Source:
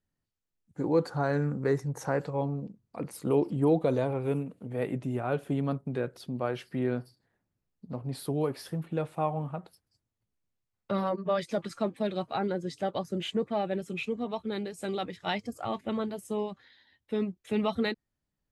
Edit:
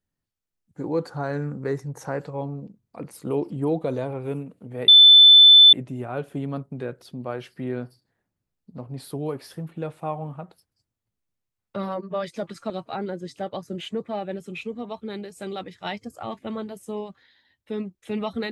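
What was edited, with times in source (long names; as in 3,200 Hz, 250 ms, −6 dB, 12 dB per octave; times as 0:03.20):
0:04.88: insert tone 3,520 Hz −7 dBFS 0.85 s
0:11.85–0:12.12: remove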